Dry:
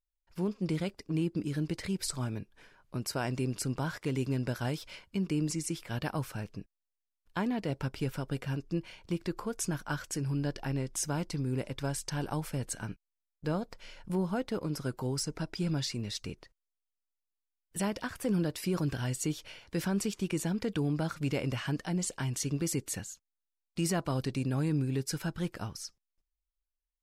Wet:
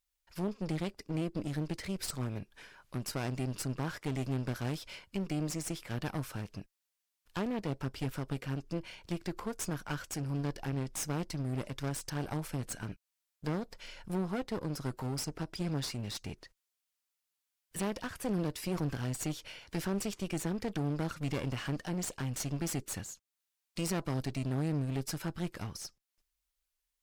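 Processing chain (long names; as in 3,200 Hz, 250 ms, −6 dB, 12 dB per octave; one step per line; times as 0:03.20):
asymmetric clip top −43 dBFS
one half of a high-frequency compander encoder only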